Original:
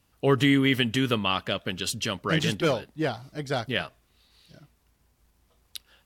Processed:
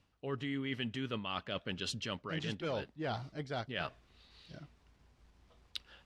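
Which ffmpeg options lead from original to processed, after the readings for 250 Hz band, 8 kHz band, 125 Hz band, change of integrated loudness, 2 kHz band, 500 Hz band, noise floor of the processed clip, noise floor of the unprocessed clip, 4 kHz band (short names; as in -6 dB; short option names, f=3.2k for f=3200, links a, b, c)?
-14.5 dB, -15.0 dB, -13.0 dB, -13.5 dB, -13.5 dB, -13.0 dB, -70 dBFS, -68 dBFS, -12.5 dB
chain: -af "lowpass=4.9k,areverse,acompressor=threshold=-36dB:ratio=10,areverse,volume=1dB"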